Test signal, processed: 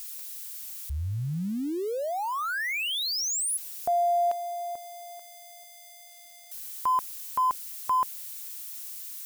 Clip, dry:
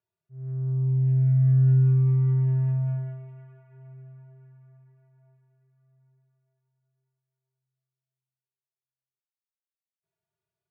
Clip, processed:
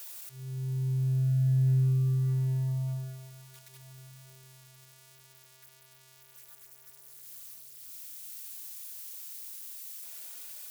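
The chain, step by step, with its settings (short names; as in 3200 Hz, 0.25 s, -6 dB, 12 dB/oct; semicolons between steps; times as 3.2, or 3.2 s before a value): switching spikes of -28.5 dBFS; gain -6 dB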